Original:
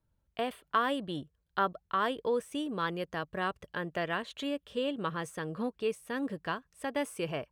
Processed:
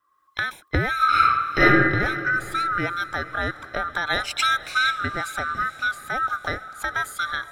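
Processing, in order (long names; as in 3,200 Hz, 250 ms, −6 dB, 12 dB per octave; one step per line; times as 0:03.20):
neighbouring bands swapped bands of 1,000 Hz
camcorder AGC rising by 21 dB per second
0:00.96–0:01.86: thrown reverb, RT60 1.2 s, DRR −10 dB
0:04.06–0:04.92: high-shelf EQ 2,100 Hz +11 dB
feedback delay with all-pass diffusion 463 ms, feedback 46%, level −15.5 dB
level +6 dB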